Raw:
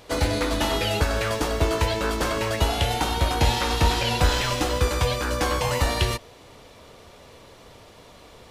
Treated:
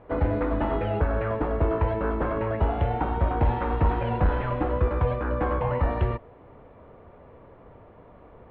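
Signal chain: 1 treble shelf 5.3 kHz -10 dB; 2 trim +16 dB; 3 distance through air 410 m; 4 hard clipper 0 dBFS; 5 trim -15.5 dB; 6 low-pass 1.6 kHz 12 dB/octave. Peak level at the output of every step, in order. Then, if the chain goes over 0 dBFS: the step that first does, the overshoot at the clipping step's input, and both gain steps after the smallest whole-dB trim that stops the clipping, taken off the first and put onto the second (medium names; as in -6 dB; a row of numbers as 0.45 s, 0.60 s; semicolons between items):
-8.5 dBFS, +7.5 dBFS, +6.5 dBFS, 0.0 dBFS, -15.5 dBFS, -15.0 dBFS; step 2, 6.5 dB; step 2 +9 dB, step 5 -8.5 dB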